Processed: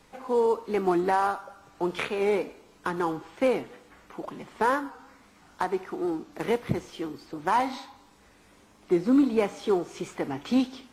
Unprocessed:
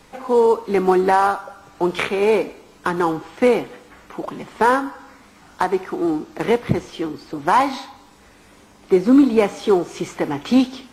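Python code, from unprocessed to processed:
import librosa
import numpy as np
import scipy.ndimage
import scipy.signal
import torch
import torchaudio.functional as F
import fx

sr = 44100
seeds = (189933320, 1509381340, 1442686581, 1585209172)

y = fx.high_shelf(x, sr, hz=8600.0, db=6.0, at=(6.33, 7.26))
y = fx.record_warp(y, sr, rpm=45.0, depth_cents=100.0)
y = y * librosa.db_to_amplitude(-8.5)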